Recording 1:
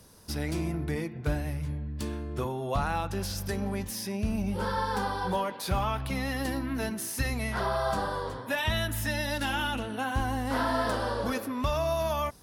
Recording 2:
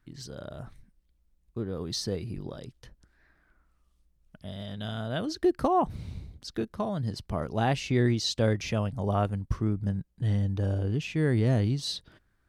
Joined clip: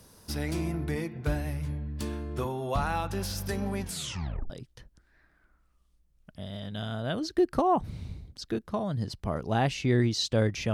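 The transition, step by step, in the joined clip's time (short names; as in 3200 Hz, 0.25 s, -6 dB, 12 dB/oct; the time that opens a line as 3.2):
recording 1
3.81 tape stop 0.69 s
4.5 switch to recording 2 from 2.56 s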